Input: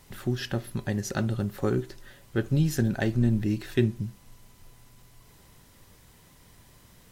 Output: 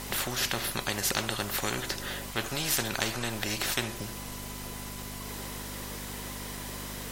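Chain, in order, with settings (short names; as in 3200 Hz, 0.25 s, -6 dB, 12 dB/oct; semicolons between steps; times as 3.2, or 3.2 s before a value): hum 50 Hz, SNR 16 dB; spectral compressor 4:1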